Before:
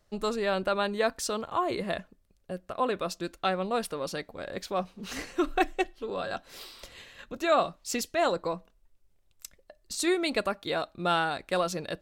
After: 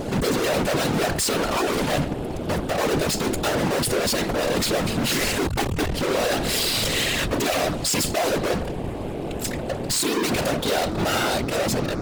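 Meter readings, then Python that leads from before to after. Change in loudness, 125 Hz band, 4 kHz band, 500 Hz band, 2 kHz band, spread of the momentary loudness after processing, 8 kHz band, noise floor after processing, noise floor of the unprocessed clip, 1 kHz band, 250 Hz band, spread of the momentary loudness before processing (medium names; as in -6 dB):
+7.5 dB, +16.0 dB, +12.0 dB, +6.5 dB, +8.0 dB, 6 LU, +13.5 dB, -30 dBFS, -67 dBFS, +4.0 dB, +9.0 dB, 15 LU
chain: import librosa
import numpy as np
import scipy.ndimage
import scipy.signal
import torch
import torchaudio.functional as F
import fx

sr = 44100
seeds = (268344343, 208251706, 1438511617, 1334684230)

y = fx.fade_out_tail(x, sr, length_s=2.46)
y = scipy.signal.sosfilt(scipy.signal.butter(2, 10000.0, 'lowpass', fs=sr, output='sos'), y)
y = fx.notch(y, sr, hz=5900.0, q=5.9)
y = fx.dmg_buzz(y, sr, base_hz=120.0, harmonics=7, level_db=-60.0, tilt_db=-3, odd_only=False)
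y = fx.fold_sine(y, sr, drive_db=11, ceiling_db=-9.0)
y = fx.graphic_eq(y, sr, hz=(125, 1000, 4000), db=(-4, -10, -3))
y = fx.rider(y, sr, range_db=3, speed_s=0.5)
y = fx.tube_stage(y, sr, drive_db=28.0, bias=0.2)
y = fx.dynamic_eq(y, sr, hz=1500.0, q=1.0, threshold_db=-47.0, ratio=4.0, max_db=-6)
y = fx.fuzz(y, sr, gain_db=47.0, gate_db=-55.0)
y = fx.whisperise(y, sr, seeds[0])
y = F.gain(torch.from_numpy(y), -8.5).numpy()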